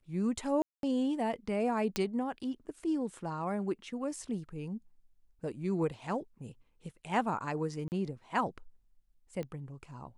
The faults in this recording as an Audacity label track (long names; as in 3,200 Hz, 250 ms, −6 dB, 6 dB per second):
0.620000	0.830000	drop-out 212 ms
1.960000	1.960000	click −15 dBFS
7.880000	7.920000	drop-out 39 ms
9.430000	9.430000	click −28 dBFS